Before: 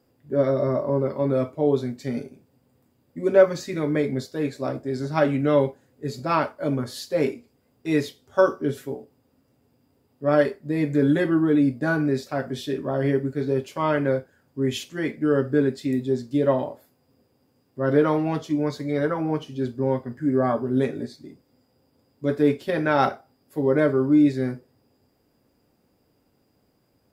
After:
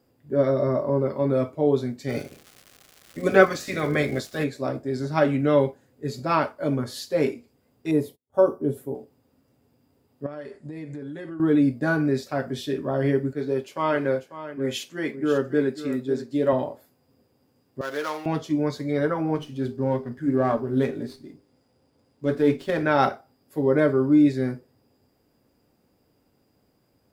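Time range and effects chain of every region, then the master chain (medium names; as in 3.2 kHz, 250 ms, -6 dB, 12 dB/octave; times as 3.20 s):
2.08–4.43 s: spectral peaks clipped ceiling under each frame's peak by 15 dB + crackle 340 per s -36 dBFS + Butterworth band-stop 920 Hz, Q 7.5
7.91–8.95 s: gate -52 dBFS, range -33 dB + high-order bell 3 kHz -15 dB 2.7 oct
10.26–11.40 s: careless resampling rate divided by 2×, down none, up filtered + compression 8:1, threshold -33 dBFS
13.33–16.53 s: high-pass 250 Hz 6 dB/octave + delay 544 ms -12.5 dB + tape noise reduction on one side only decoder only
17.81–18.26 s: median filter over 15 samples + high-pass 1.1 kHz 6 dB/octave + tilt EQ +2.5 dB/octave
19.35–22.83 s: hum notches 50/100/150/200/250/300/350/400 Hz + sliding maximum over 3 samples
whole clip: none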